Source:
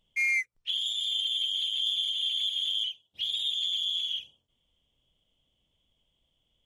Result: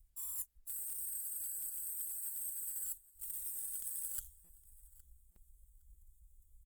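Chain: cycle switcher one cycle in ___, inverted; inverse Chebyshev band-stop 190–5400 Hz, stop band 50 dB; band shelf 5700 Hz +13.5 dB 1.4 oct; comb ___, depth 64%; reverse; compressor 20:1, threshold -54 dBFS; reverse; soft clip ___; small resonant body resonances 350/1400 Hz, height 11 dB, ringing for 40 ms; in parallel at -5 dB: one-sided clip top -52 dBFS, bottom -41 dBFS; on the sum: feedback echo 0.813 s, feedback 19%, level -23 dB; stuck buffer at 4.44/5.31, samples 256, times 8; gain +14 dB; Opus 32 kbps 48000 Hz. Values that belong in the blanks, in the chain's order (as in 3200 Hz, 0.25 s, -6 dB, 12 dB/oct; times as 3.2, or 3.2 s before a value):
2, 5.5 ms, -38.5 dBFS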